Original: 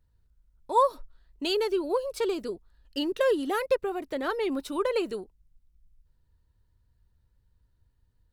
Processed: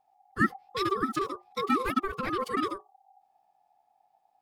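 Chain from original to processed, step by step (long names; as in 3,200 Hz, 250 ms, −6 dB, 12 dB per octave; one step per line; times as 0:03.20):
mains-hum notches 60/120/180/240/300/360/420 Hz
phase-vocoder stretch with locked phases 0.53×
ring modulation 780 Hz
level +3 dB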